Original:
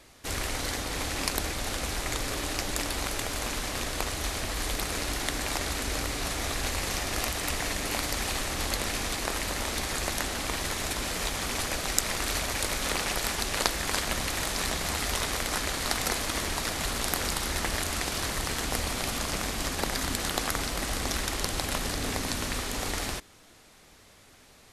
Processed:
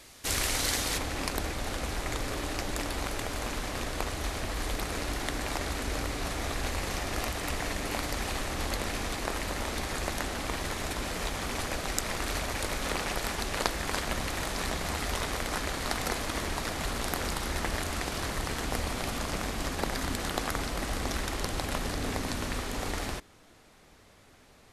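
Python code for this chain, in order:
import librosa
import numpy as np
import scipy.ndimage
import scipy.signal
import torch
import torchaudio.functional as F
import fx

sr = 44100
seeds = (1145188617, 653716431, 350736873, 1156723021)

y = fx.high_shelf(x, sr, hz=2500.0, db=fx.steps((0.0, 6.0), (0.97, -7.0)))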